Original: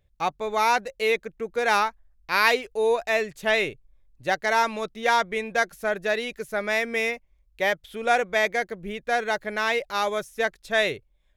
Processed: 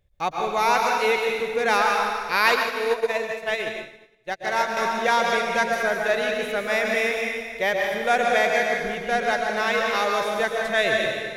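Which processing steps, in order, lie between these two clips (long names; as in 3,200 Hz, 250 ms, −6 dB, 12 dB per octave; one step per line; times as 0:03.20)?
dense smooth reverb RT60 1.8 s, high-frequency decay 0.95×, pre-delay 105 ms, DRR −0.5 dB
0:02.54–0:04.77: expander for the loud parts 2.5 to 1, over −36 dBFS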